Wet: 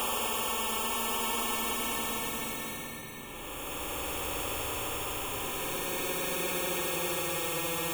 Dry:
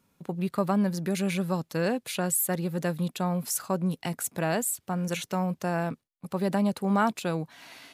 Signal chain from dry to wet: peak limiter -24 dBFS, peak gain reduction 11.5 dB; sample-and-hold 22×; Paulstretch 27×, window 0.10 s, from 7.02 s; static phaser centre 1 kHz, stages 8; spectrum-flattening compressor 2:1; trim +5 dB

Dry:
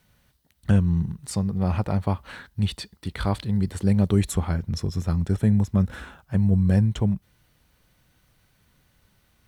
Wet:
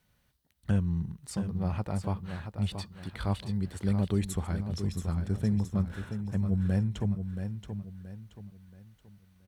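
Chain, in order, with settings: feedback delay 677 ms, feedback 36%, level -8 dB; trim -8 dB

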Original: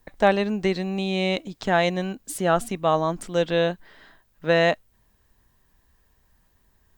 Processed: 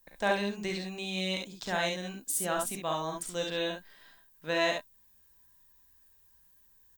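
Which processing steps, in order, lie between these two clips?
pre-emphasis filter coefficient 0.8; small resonant body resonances 1/1.6/2.5/3.6 kHz, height 8 dB, ringing for 95 ms; on a send: early reflections 39 ms -7.5 dB, 54 ms -6.5 dB, 69 ms -4.5 dB

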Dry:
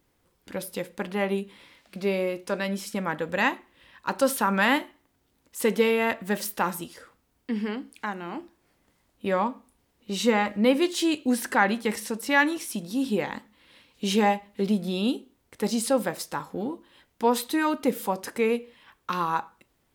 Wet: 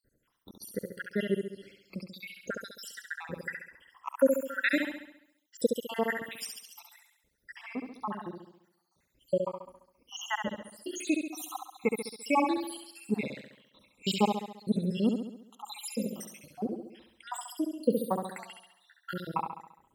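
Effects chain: random holes in the spectrogram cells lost 84%; flutter echo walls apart 11.7 m, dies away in 0.75 s

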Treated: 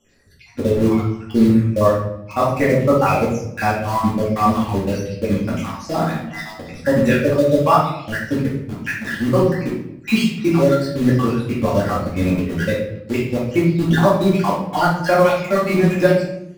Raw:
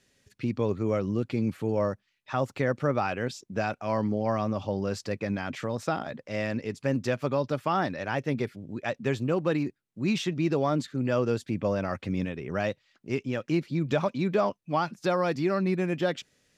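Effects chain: random holes in the spectrogram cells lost 62%; in parallel at -5.5 dB: bit crusher 6-bit; on the sum: simulated room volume 190 m³, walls mixed, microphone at 2.3 m; trim +3 dB

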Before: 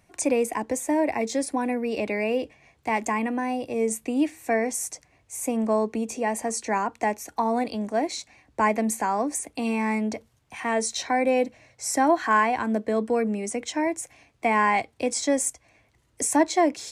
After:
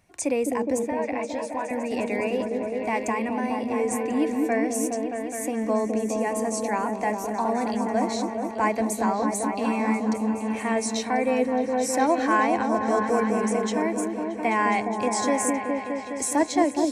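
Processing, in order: 0.79–1.71 s: three-band isolator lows -22 dB, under 570 Hz, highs -14 dB, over 3.9 kHz; on a send: delay with an opening low-pass 208 ms, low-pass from 400 Hz, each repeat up 1 oct, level 0 dB; on the sum: trim -2 dB

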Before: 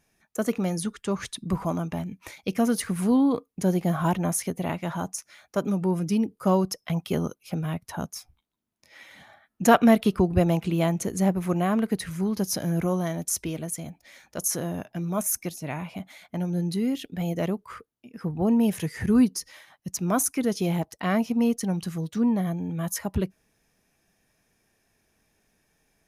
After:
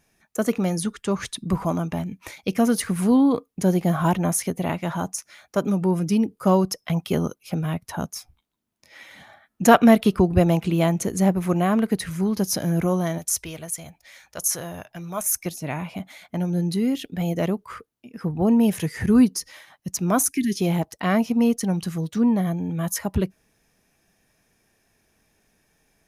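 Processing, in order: 13.18–15.46 s: peaking EQ 250 Hz -12 dB 1.9 oct; 20.29–20.59 s: spectral selection erased 420–1600 Hz; trim +3.5 dB

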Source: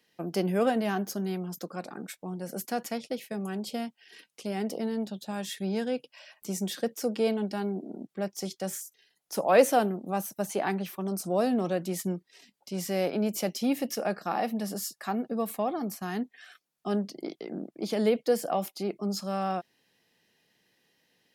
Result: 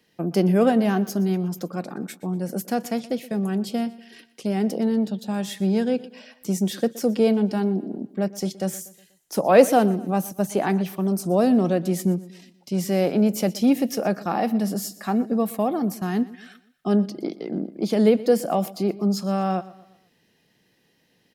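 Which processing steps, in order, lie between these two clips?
bass shelf 380 Hz +9 dB; on a send: feedback delay 121 ms, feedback 45%, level -19 dB; on the sum: trim +3 dB

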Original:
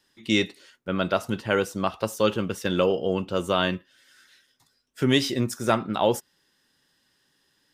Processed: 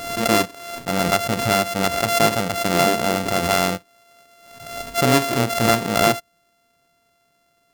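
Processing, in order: sorted samples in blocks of 64 samples; swell ahead of each attack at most 55 dB/s; trim +4 dB

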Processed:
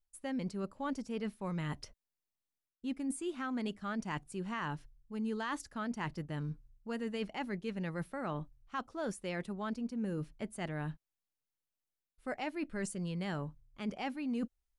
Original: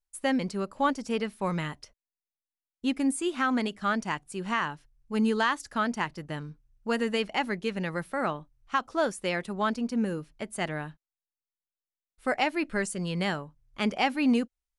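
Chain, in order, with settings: bass shelf 370 Hz +8 dB; reverse; compression 6:1, threshold -34 dBFS, peak gain reduction 18 dB; reverse; trim -1.5 dB

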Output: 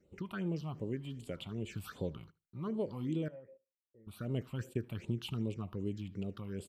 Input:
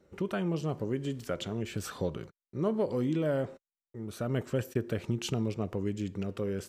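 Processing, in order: 3.28–4.07 s: cascade formant filter e; phase shifter stages 6, 2.6 Hz, lowest notch 420–1700 Hz; feedback delay 76 ms, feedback 17%, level -23 dB; trim -5 dB

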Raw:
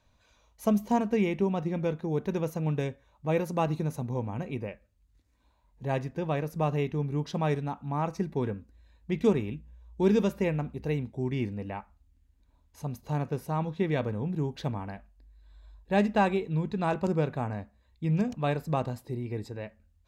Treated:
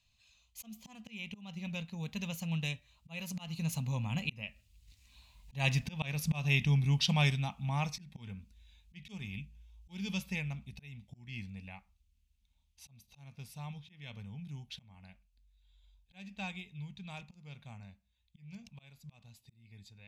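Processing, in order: Doppler pass-by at 5.75 s, 19 m/s, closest 15 m; bass shelf 190 Hz +3 dB; slow attack 313 ms; FFT filter 210 Hz 0 dB, 340 Hz -19 dB, 780 Hz -4 dB, 1.6 kHz -4 dB, 2.6 kHz +15 dB, 10 kHz +10 dB; trim +6 dB

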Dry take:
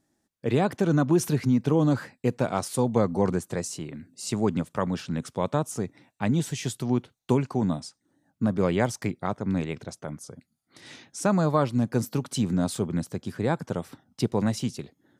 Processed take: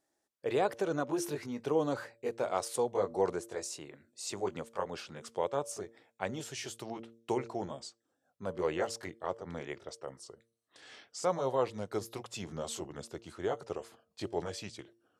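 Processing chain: pitch bend over the whole clip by -3 st starting unshifted; resonant low shelf 310 Hz -11.5 dB, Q 1.5; de-hum 114.7 Hz, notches 5; trim -5 dB

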